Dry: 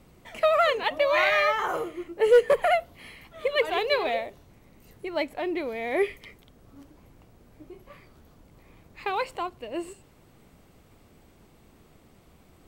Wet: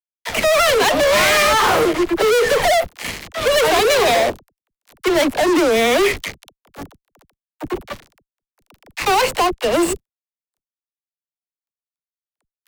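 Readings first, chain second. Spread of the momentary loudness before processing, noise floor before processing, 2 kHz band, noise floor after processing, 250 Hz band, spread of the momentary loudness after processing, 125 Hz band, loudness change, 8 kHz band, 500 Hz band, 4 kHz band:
15 LU, -58 dBFS, +10.0 dB, under -85 dBFS, +15.5 dB, 15 LU, +17.0 dB, +9.5 dB, no reading, +8.5 dB, +14.5 dB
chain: fuzz box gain 41 dB, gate -45 dBFS; gate with hold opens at -39 dBFS; phase dispersion lows, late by 43 ms, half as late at 350 Hz

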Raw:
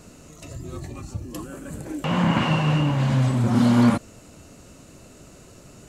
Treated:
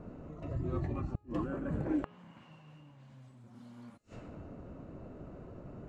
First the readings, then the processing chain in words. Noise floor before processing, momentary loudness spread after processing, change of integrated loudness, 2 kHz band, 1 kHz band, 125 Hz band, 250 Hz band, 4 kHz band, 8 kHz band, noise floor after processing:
-48 dBFS, 20 LU, -19.0 dB, -21.5 dB, -20.0 dB, -18.0 dB, -17.0 dB, under -30 dB, under -30 dB, -58 dBFS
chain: level-controlled noise filter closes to 930 Hz, open at -16 dBFS; inverted gate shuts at -22 dBFS, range -35 dB; de-hum 416.3 Hz, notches 37

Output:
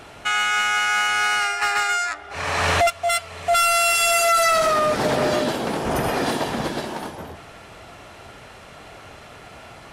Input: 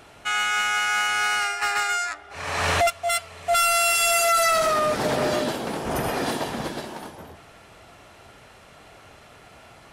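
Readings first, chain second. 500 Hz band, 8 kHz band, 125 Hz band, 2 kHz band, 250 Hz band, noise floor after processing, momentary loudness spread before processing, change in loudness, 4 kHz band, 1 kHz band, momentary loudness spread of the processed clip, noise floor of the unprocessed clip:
+3.0 dB, +1.0 dB, +3.5 dB, +2.5 dB, +3.5 dB, -43 dBFS, 13 LU, +2.5 dB, +2.5 dB, +3.0 dB, 11 LU, -50 dBFS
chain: treble shelf 8.7 kHz -4.5 dB; in parallel at +1 dB: compression, threshold -30 dBFS, peak gain reduction 11 dB

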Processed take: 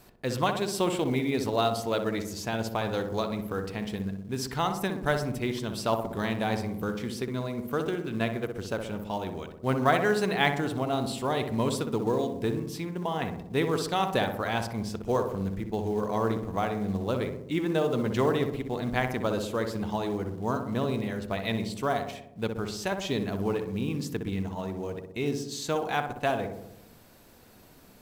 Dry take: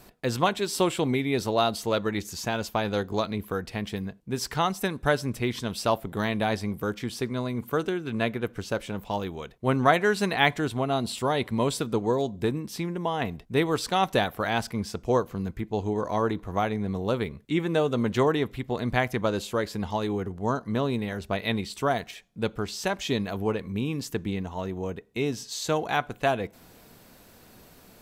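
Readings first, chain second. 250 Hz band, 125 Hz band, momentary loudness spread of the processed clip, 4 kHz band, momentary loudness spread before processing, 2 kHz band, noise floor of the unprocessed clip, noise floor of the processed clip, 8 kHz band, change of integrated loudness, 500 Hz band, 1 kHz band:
-1.5 dB, -1.5 dB, 7 LU, -3.0 dB, 8 LU, -3.0 dB, -53 dBFS, -53 dBFS, -3.0 dB, -2.0 dB, -1.5 dB, -2.5 dB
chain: filtered feedback delay 62 ms, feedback 68%, low-pass 1.2 kHz, level -5 dB; in parallel at -7 dB: short-mantissa float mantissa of 2-bit; on the sum: trim -6.5 dB

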